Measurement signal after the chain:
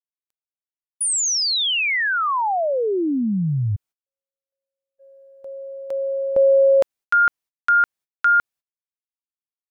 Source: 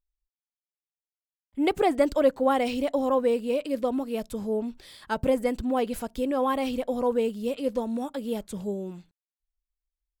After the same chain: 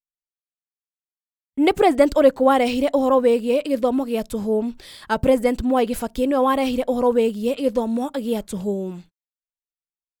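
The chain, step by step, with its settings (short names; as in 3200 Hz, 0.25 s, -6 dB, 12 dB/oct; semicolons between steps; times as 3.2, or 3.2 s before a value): gate -51 dBFS, range -35 dB; gain +7 dB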